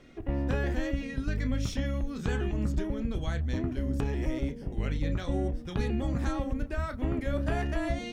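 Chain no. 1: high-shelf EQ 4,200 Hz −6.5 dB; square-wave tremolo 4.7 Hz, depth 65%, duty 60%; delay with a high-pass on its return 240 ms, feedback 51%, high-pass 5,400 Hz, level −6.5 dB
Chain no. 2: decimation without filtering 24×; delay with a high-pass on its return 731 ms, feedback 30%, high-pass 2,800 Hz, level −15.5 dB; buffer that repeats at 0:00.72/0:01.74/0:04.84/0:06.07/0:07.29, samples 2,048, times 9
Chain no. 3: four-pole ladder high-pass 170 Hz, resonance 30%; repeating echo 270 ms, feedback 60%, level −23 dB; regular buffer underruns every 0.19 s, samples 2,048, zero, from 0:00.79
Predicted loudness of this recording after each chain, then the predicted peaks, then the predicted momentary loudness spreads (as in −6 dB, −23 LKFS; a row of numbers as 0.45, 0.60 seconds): −34.0, −32.0, −40.5 LKFS; −19.0, −19.0, −26.0 dBFS; 4, 3, 4 LU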